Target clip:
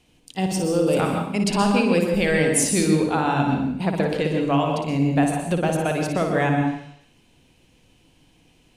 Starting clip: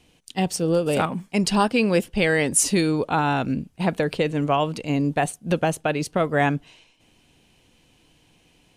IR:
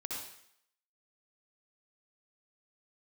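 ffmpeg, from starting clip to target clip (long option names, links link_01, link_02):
-filter_complex "[0:a]asplit=2[link_01][link_02];[1:a]atrim=start_sample=2205,lowshelf=frequency=430:gain=7,adelay=58[link_03];[link_02][link_03]afir=irnorm=-1:irlink=0,volume=-3dB[link_04];[link_01][link_04]amix=inputs=2:normalize=0,volume=-2.5dB"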